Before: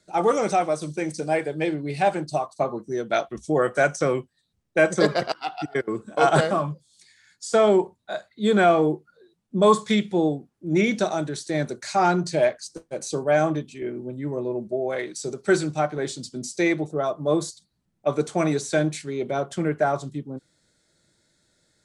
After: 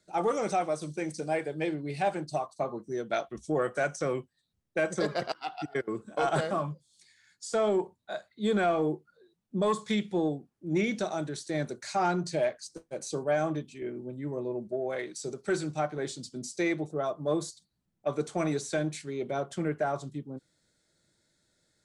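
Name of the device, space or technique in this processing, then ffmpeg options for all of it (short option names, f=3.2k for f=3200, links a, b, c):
soft clipper into limiter: -af "asoftclip=type=tanh:threshold=-7.5dB,alimiter=limit=-13dB:level=0:latency=1:release=216,volume=-6dB"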